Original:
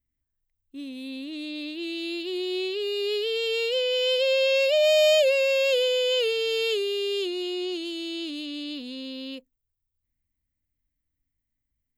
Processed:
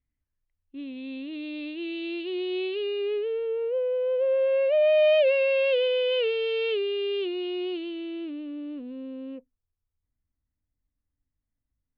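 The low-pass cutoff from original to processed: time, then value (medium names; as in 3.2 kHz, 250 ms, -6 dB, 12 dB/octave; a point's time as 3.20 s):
low-pass 24 dB/octave
2.79 s 3 kHz
3.55 s 1.3 kHz
4.09 s 1.3 kHz
5.29 s 2.8 kHz
7.75 s 2.8 kHz
8.55 s 1.6 kHz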